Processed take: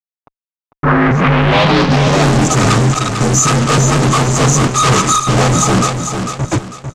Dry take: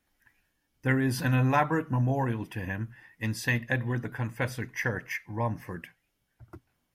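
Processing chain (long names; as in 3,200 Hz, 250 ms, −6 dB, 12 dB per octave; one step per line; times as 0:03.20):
partials spread apart or drawn together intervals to 83%
reversed playback
downward compressor, threshold −33 dBFS, peak gain reduction 12 dB
reversed playback
brick-wall band-stop 1,300–5,800 Hz
fuzz pedal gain 59 dB, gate −57 dBFS
low-pass filter sweep 820 Hz → 7,500 Hz, 0:00.36–0:02.26
on a send: repeating echo 448 ms, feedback 34%, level −7 dB
on the sum: level +2.5 dB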